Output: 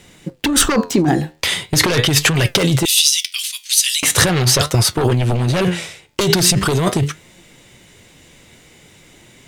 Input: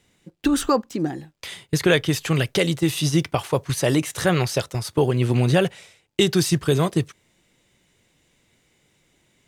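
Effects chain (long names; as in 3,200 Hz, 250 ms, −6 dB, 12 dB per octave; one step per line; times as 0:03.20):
flanger 0.41 Hz, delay 5.2 ms, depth 8.7 ms, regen +78%
0:02.85–0:04.03: inverse Chebyshev high-pass filter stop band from 530 Hz, stop band 80 dB
sine wavefolder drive 14 dB, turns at −5 dBFS
compressor whose output falls as the input rises −14 dBFS, ratio −1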